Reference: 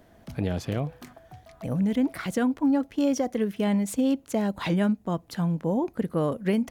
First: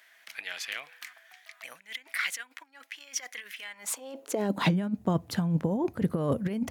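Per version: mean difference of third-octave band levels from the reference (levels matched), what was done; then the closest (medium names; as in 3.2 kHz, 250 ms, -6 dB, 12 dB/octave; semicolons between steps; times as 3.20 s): 10.0 dB: compressor with a negative ratio -27 dBFS, ratio -0.5; high-pass sweep 2 kHz -> 89 Hz, 3.62–4.98 s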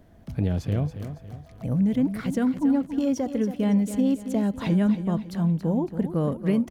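5.0 dB: bass shelf 260 Hz +11.5 dB; feedback delay 278 ms, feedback 41%, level -10.5 dB; trim -4.5 dB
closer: second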